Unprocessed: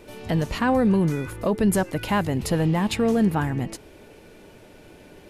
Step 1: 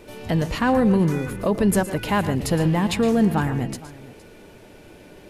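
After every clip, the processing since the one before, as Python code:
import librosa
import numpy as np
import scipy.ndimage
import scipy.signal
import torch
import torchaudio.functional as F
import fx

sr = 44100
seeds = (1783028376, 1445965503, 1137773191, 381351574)

y = fx.echo_multitap(x, sr, ms=(115, 144, 464), db=(-13.5, -17.0, -19.5))
y = F.gain(torch.from_numpy(y), 1.5).numpy()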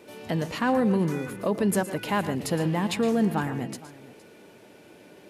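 y = scipy.signal.sosfilt(scipy.signal.butter(2, 160.0, 'highpass', fs=sr, output='sos'), x)
y = F.gain(torch.from_numpy(y), -4.0).numpy()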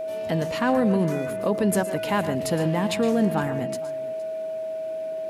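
y = x + 10.0 ** (-29.0 / 20.0) * np.sin(2.0 * np.pi * 640.0 * np.arange(len(x)) / sr)
y = F.gain(torch.from_numpy(y), 1.5).numpy()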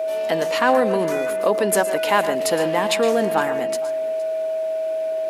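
y = scipy.signal.sosfilt(scipy.signal.butter(2, 430.0, 'highpass', fs=sr, output='sos'), x)
y = F.gain(torch.from_numpy(y), 7.5).numpy()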